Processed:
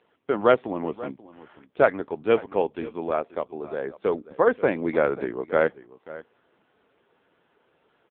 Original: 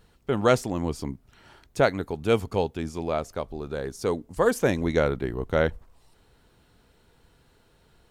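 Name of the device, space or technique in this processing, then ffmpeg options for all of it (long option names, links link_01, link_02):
satellite phone: -af "highpass=300,lowpass=3100,aecho=1:1:537:0.133,volume=3.5dB" -ar 8000 -c:a libopencore_amrnb -b:a 5900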